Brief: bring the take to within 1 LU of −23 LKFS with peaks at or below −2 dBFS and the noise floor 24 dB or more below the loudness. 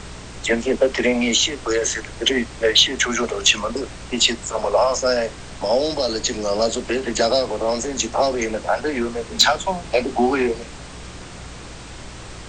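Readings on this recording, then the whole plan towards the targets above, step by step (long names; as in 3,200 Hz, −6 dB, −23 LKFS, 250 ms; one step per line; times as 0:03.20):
mains hum 60 Hz; hum harmonics up to 180 Hz; level of the hum −39 dBFS; background noise floor −37 dBFS; target noise floor −44 dBFS; integrated loudness −20.0 LKFS; sample peak −2.5 dBFS; target loudness −23.0 LKFS
→ hum removal 60 Hz, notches 3
noise reduction from a noise print 7 dB
level −3 dB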